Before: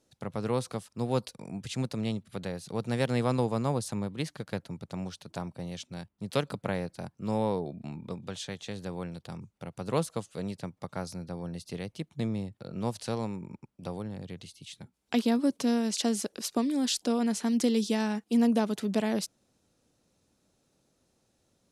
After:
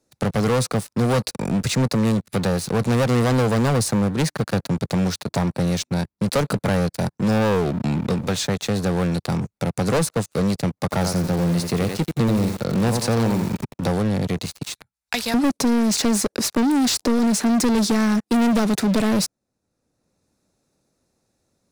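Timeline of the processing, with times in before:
10.79–13.9 lo-fi delay 87 ms, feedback 35%, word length 8-bit, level -8 dB
14.63–15.34 passive tone stack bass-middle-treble 10-0-10
whole clip: bell 3100 Hz -11 dB 0.25 oct; sample leveller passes 5; three-band squash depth 40%; gain -1 dB

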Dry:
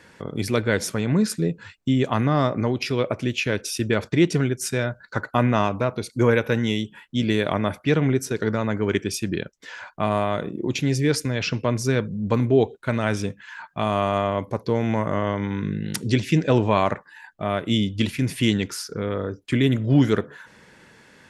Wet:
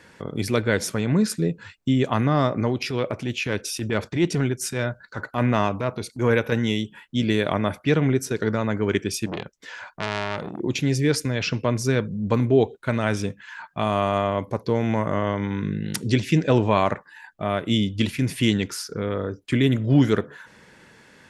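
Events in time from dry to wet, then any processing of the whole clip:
2.69–6.52 transient shaper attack -8 dB, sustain 0 dB
9.26–10.6 core saturation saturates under 2100 Hz

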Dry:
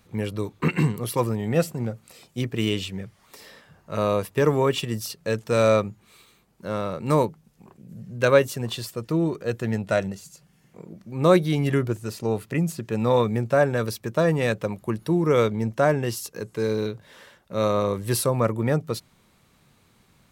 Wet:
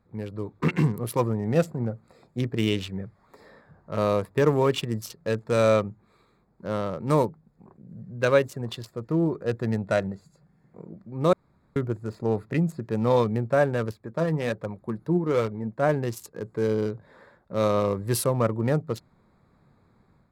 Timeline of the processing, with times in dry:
11.33–11.76 room tone
13.91–15.89 flange 1.3 Hz, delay 0.8 ms, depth 6.4 ms, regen +55%
whole clip: Wiener smoothing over 15 samples; AGC gain up to 7 dB; gain -6.5 dB

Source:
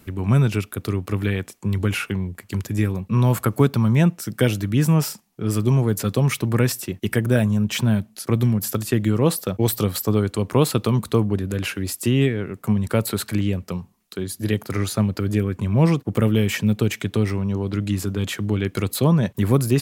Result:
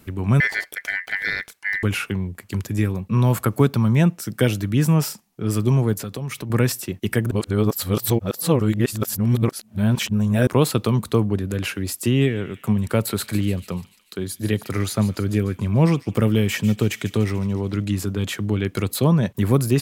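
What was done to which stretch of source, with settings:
0.4–1.83 ring modulator 1900 Hz
5.93–6.5 compressor 4:1, threshold -27 dBFS
7.31–10.47 reverse
12.12–17.85 thin delay 0.146 s, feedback 58%, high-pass 2600 Hz, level -12 dB

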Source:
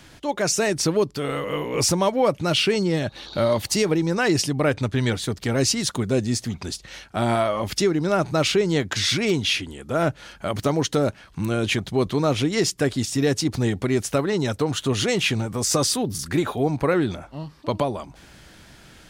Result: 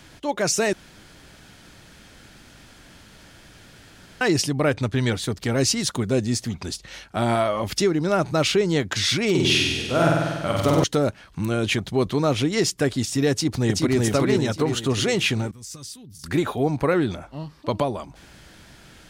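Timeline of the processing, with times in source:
0.73–4.21 room tone
9.3–10.84 flutter echo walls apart 8.3 m, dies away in 1.4 s
13.31–14 echo throw 0.38 s, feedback 45%, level -1 dB
15.51–16.24 passive tone stack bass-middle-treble 6-0-2

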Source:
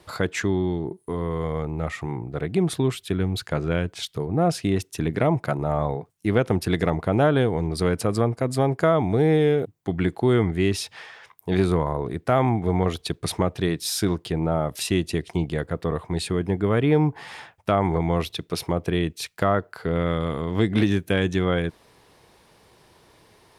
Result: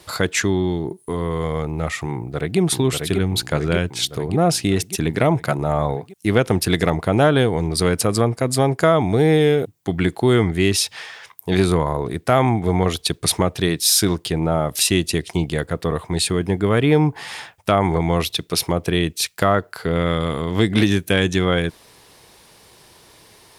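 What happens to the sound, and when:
2.13–2.59 echo throw 0.59 s, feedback 65%, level -4 dB
whole clip: high shelf 3000 Hz +10 dB; gain +3.5 dB

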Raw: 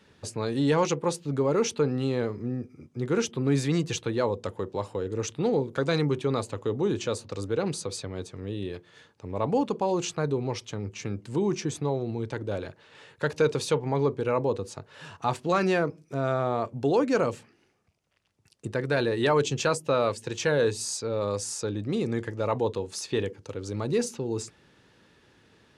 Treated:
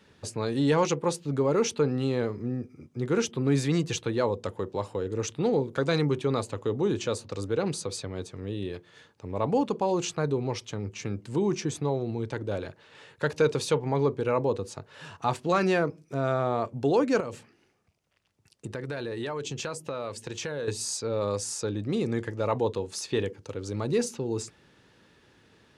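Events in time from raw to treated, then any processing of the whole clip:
17.2–20.68 compressor 4:1, threshold -31 dBFS

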